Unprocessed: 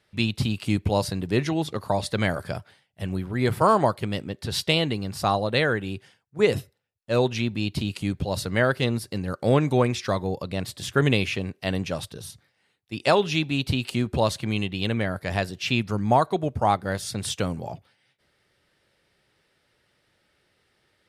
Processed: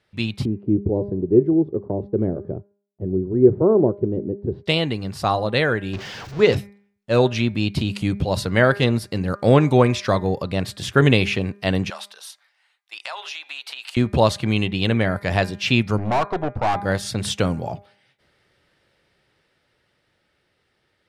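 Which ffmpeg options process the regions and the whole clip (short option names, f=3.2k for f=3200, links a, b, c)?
-filter_complex "[0:a]asettb=1/sr,asplit=3[a][b][c];[a]atrim=end=0.454[d];[b]atrim=start=0.45:end=4.66,asetpts=PTS-STARTPTS,afade=t=in:d=0.004:c=qsin,afade=t=out:st=4.206:d=0.004:c=qsin,lowpass=f=380:t=q:w=4.5,agate=range=-33dB:threshold=-44dB:ratio=3:release=100:detection=peak[e];[c]atrim=start=4.656[f];[d][e]acrossfade=d=0.004:c1=hsin:c2=qsin[g];[g][f]acrossfade=d=0.004:c1=qsin:c2=hsin,asettb=1/sr,asplit=3[h][i][j];[h]atrim=end=5.934[k];[i]atrim=start=5.93:end=6.57,asetpts=PTS-STARTPTS,afade=t=in:d=0.004:c=qsin,afade=t=out:st=0.636:d=0.004:c=qsin,aeval=exprs='val(0)+0.5*0.0237*sgn(val(0))':c=same,highshelf=f=7.4k:t=q:w=1.5:g=-10[l];[j]atrim=start=6.566[m];[k][l]acrossfade=d=0.004:c1=hsin:c2=qsin[n];[n][m]acrossfade=d=0.004:c1=qsin:c2=hsin,asettb=1/sr,asplit=3[o][p][q];[o]atrim=end=11.904[r];[p]atrim=start=11.9:end=13.97,asetpts=PTS-STARTPTS,afade=t=in:d=0.004:c=qsin,afade=t=out:st=2.066:d=0.004:c=qsin,highpass=f=800:w=0.5412,highpass=f=800:w=1.3066,acompressor=threshold=-34dB:ratio=6:attack=3.2:release=140:knee=1:detection=peak[s];[q]atrim=start=13.966[t];[r][s]acrossfade=d=0.004:c1=hsin:c2=qsin[u];[u][t]acrossfade=d=0.004:c1=qsin:c2=hsin,asettb=1/sr,asplit=3[v][w][x];[v]atrim=end=15.984[y];[w]atrim=start=15.98:end=16.76,asetpts=PTS-STARTPTS,afade=t=in:d=0.004:c=qsin,afade=t=out:st=0.776:d=0.004:c=qsin,lowpass=4k,aeval=exprs='(tanh(25.1*val(0)+0.75)-tanh(0.75))/25.1':c=same,equalizer=f=890:t=o:w=1.6:g=6.5[z];[x]atrim=start=16.756[aa];[y][z]acrossfade=d=0.004:c1=hsin:c2=qsin[ab];[ab][aa]acrossfade=d=0.004:c1=qsin:c2=hsin,dynaudnorm=f=270:g=21:m=11.5dB,highshelf=f=7k:g=-8.5,bandreject=f=202:t=h:w=4,bandreject=f=404:t=h:w=4,bandreject=f=606:t=h:w=4,bandreject=f=808:t=h:w=4,bandreject=f=1.01k:t=h:w=4,bandreject=f=1.212k:t=h:w=4,bandreject=f=1.414k:t=h:w=4,bandreject=f=1.616k:t=h:w=4,bandreject=f=1.818k:t=h:w=4,bandreject=f=2.02k:t=h:w=4,bandreject=f=2.222k:t=h:w=4,bandreject=f=2.424k:t=h:w=4"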